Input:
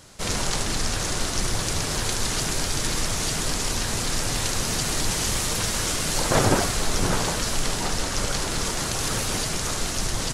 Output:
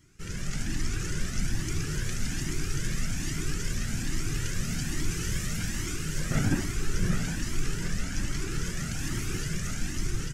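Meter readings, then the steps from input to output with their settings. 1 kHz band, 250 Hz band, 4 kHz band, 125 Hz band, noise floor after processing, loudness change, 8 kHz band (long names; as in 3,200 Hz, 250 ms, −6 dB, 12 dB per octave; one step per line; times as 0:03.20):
−15.5 dB, −3.0 dB, −12.5 dB, −1.5 dB, −34 dBFS, −8.0 dB, −11.0 dB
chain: flat-topped bell 680 Hz −15 dB
automatic gain control gain up to 6 dB
graphic EQ with 15 bands 160 Hz +7 dB, 400 Hz +8 dB, 4,000 Hz −11 dB, 10,000 Hz −9 dB
flanger whose copies keep moving one way rising 1.2 Hz
level −6.5 dB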